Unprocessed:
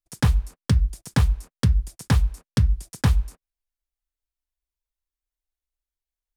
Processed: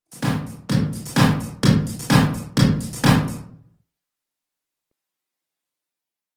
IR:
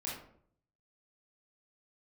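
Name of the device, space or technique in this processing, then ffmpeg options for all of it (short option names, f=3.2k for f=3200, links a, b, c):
far-field microphone of a smart speaker: -filter_complex "[1:a]atrim=start_sample=2205[a];[0:a][a]afir=irnorm=-1:irlink=0,highpass=f=150:w=0.5412,highpass=f=150:w=1.3066,dynaudnorm=f=340:g=5:m=7dB,volume=3dB" -ar 48000 -c:a libopus -b:a 20k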